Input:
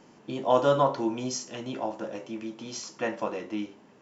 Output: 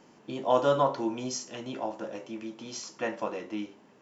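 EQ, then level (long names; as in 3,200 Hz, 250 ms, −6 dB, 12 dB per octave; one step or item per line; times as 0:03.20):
low-shelf EQ 170 Hz −3.5 dB
−1.5 dB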